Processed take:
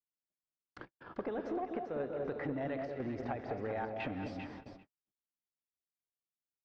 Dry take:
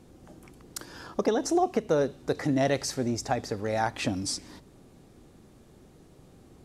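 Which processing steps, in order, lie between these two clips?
gated-style reverb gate 260 ms rising, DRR 12 dB; square tremolo 1 Hz, depth 65%, duty 85%; compression 16:1, threshold -30 dBFS, peak gain reduction 12 dB; bass shelf 240 Hz -4 dB; on a send: echo whose repeats swap between lows and highs 197 ms, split 870 Hz, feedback 61%, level -4.5 dB; on the sum: gate -43 dBFS, range -57 dB; in parallel at -10.5 dB: wavefolder -32 dBFS; on the sum: low-pass 2.7 kHz 24 dB/octave; trim -4.5 dB

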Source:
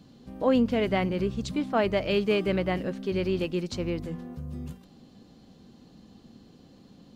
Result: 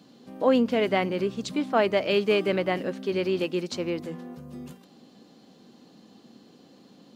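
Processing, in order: high-pass 240 Hz 12 dB/octave; trim +3 dB

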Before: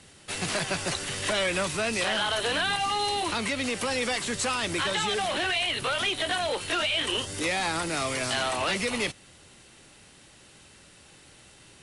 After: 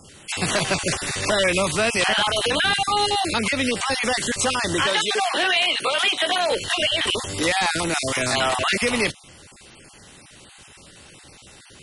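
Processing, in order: random holes in the spectrogram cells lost 22%; 4.86–6.51 s: high-pass 300 Hz 12 dB/octave; trim +7.5 dB

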